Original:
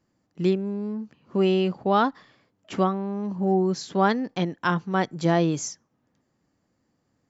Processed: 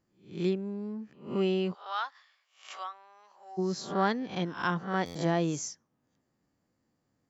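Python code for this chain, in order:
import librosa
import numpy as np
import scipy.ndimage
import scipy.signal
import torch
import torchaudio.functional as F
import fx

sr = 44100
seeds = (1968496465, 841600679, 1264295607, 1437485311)

y = fx.spec_swells(x, sr, rise_s=0.41)
y = fx.bessel_highpass(y, sr, hz=1300.0, order=4, at=(1.73, 3.57), fade=0.02)
y = fx.buffer_glitch(y, sr, at_s=(5.05,), block=512, repeats=8)
y = y * 10.0 ** (-7.0 / 20.0)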